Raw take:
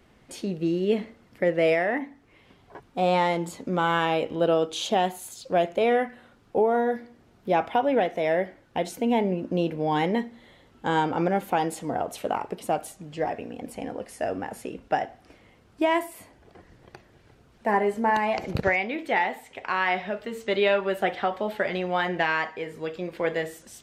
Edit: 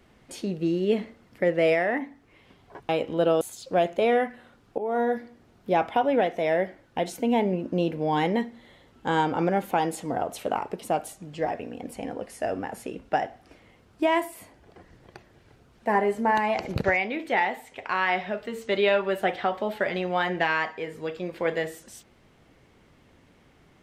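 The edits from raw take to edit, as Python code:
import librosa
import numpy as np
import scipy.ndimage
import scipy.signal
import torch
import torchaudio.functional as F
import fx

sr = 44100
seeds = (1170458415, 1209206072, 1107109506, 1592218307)

y = fx.edit(x, sr, fx.cut(start_s=2.89, length_s=1.22),
    fx.cut(start_s=4.63, length_s=0.57),
    fx.fade_in_from(start_s=6.57, length_s=0.25, floor_db=-17.0), tone=tone)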